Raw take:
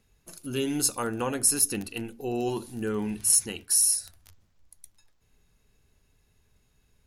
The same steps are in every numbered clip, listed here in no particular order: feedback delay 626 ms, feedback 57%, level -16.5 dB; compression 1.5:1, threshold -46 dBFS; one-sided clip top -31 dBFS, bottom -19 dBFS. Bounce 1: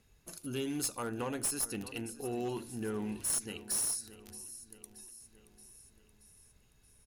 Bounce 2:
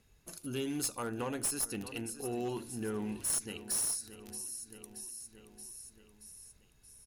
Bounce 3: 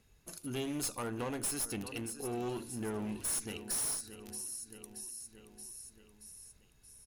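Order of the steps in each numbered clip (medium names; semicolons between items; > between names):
compression > feedback delay > one-sided clip; feedback delay > compression > one-sided clip; feedback delay > one-sided clip > compression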